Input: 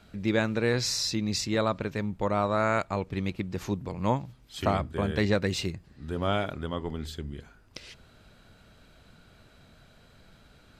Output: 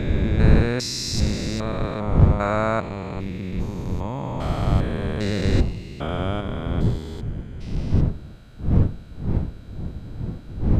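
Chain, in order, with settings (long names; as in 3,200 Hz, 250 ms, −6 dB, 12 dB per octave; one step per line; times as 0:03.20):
spectrum averaged block by block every 400 ms
wind on the microphone 130 Hz −28 dBFS
level +5 dB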